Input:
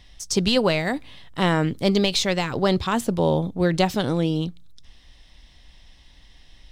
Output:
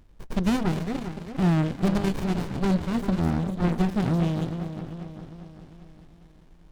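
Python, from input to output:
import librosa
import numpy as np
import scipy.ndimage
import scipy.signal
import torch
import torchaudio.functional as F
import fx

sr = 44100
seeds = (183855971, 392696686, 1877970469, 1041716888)

y = fx.hum_notches(x, sr, base_hz=50, count=5)
y = fx.echo_split(y, sr, split_hz=1700.0, low_ms=400, high_ms=242, feedback_pct=52, wet_db=-8.5)
y = fx.running_max(y, sr, window=65)
y = y * 10.0 ** (-2.5 / 20.0)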